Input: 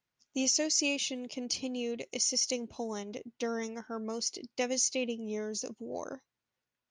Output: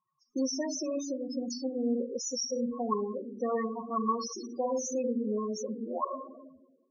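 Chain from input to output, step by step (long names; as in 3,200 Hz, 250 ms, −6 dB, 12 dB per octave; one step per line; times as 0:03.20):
pitch vibrato 5.4 Hz 17 cents
0:02.87–0:03.71: dynamic equaliser 370 Hz, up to +5 dB, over −51 dBFS, Q 4.1
0:04.26–0:04.90: flutter between parallel walls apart 9.9 metres, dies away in 0.62 s
rectangular room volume 680 cubic metres, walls mixed, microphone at 1 metre
brickwall limiter −24 dBFS, peak gain reduction 8.5 dB
flat-topped bell 2,400 Hz −12.5 dB 1.2 octaves
hollow resonant body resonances 1,100/1,900 Hz, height 18 dB, ringing for 30 ms
spectral peaks only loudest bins 8
0:00.76–0:01.45: Butterworth band-reject 2,000 Hz, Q 1.3
level +3.5 dB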